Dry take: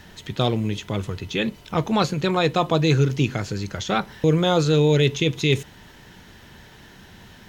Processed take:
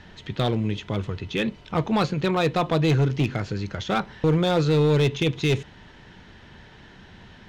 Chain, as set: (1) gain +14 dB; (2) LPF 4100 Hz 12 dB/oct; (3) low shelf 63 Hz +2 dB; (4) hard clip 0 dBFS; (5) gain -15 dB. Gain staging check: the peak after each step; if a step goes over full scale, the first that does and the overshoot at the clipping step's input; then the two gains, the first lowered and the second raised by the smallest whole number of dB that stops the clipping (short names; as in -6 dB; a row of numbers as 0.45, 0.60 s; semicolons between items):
+7.0, +7.0, +7.0, 0.0, -15.0 dBFS; step 1, 7.0 dB; step 1 +7 dB, step 5 -8 dB